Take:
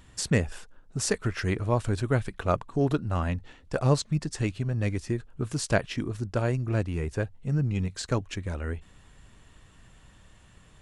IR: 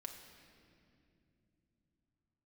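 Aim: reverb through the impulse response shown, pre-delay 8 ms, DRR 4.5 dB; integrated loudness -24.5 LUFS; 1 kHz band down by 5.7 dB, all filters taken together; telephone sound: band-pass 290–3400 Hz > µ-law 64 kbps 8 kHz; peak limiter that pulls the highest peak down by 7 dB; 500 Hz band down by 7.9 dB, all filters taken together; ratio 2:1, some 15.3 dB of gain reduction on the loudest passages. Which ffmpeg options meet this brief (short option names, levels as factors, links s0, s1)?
-filter_complex "[0:a]equalizer=f=500:t=o:g=-8,equalizer=f=1000:t=o:g=-5,acompressor=threshold=0.00355:ratio=2,alimiter=level_in=2.82:limit=0.0631:level=0:latency=1,volume=0.355,asplit=2[s0][s1];[1:a]atrim=start_sample=2205,adelay=8[s2];[s1][s2]afir=irnorm=-1:irlink=0,volume=0.944[s3];[s0][s3]amix=inputs=2:normalize=0,highpass=290,lowpass=3400,volume=22.4" -ar 8000 -c:a pcm_mulaw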